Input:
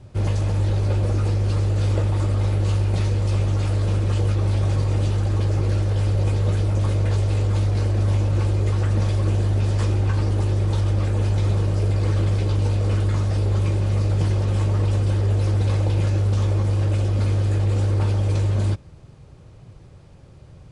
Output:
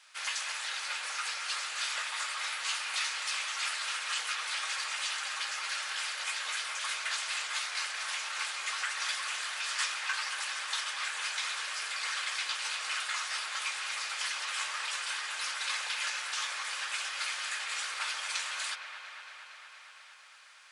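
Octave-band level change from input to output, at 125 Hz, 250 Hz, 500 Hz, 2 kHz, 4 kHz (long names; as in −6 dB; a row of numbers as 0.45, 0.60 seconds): below −40 dB, below −40 dB, −26.0 dB, +7.0 dB, +7.0 dB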